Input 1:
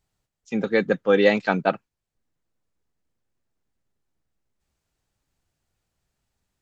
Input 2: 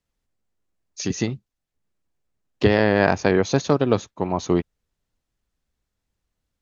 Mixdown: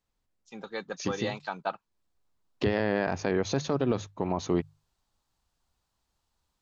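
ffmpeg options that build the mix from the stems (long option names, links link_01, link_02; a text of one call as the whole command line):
ffmpeg -i stem1.wav -i stem2.wav -filter_complex "[0:a]equalizer=frequency=125:width_type=o:width=1:gain=-7,equalizer=frequency=250:width_type=o:width=1:gain=-7,equalizer=frequency=500:width_type=o:width=1:gain=-5,equalizer=frequency=1000:width_type=o:width=1:gain=10,equalizer=frequency=2000:width_type=o:width=1:gain=-7,equalizer=frequency=4000:width_type=o:width=1:gain=6,alimiter=limit=-9.5dB:level=0:latency=1:release=344,volume=-2.5dB,afade=type=in:start_time=1.42:duration=0.5:silence=0.354813,asplit=2[link_01][link_02];[1:a]highshelf=frequency=5900:gain=-6.5,bandreject=frequency=50:width_type=h:width=6,bandreject=frequency=100:width_type=h:width=6,bandreject=frequency=150:width_type=h:width=6,volume=-2.5dB[link_03];[link_02]apad=whole_len=291562[link_04];[link_03][link_04]sidechaincompress=threshold=-38dB:ratio=8:attack=16:release=252[link_05];[link_01][link_05]amix=inputs=2:normalize=0,alimiter=limit=-16dB:level=0:latency=1:release=62" out.wav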